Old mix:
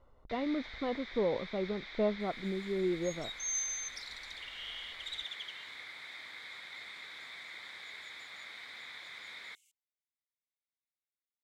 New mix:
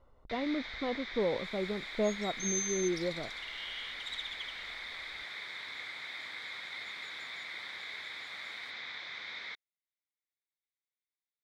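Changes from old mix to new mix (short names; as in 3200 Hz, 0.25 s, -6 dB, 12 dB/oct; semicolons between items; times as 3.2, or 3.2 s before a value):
first sound +4.5 dB; second sound: entry -1.00 s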